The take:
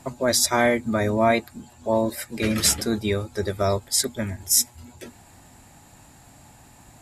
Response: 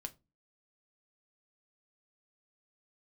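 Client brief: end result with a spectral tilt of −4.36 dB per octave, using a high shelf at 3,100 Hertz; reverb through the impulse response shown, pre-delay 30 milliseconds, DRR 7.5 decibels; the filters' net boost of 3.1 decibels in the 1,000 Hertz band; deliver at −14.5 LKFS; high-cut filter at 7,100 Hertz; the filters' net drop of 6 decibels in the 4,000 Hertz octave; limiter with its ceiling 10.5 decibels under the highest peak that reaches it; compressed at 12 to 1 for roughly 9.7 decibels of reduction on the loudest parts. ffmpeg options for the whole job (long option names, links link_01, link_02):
-filter_complex "[0:a]lowpass=7100,equalizer=frequency=1000:width_type=o:gain=5,highshelf=frequency=3100:gain=-4,equalizer=frequency=4000:width_type=o:gain=-3.5,acompressor=threshold=-22dB:ratio=12,alimiter=limit=-20.5dB:level=0:latency=1,asplit=2[link_01][link_02];[1:a]atrim=start_sample=2205,adelay=30[link_03];[link_02][link_03]afir=irnorm=-1:irlink=0,volume=-4dB[link_04];[link_01][link_04]amix=inputs=2:normalize=0,volume=16dB"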